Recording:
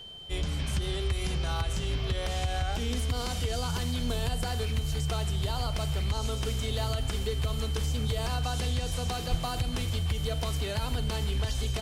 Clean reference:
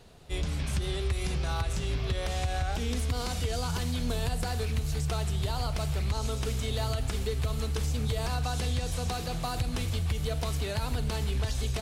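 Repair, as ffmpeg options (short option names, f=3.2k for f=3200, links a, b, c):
-filter_complex "[0:a]bandreject=f=3.1k:w=30,asplit=3[a][b][c];[a]afade=t=out:st=9.3:d=0.02[d];[b]highpass=f=140:w=0.5412,highpass=f=140:w=1.3066,afade=t=in:st=9.3:d=0.02,afade=t=out:st=9.42:d=0.02[e];[c]afade=t=in:st=9.42:d=0.02[f];[d][e][f]amix=inputs=3:normalize=0"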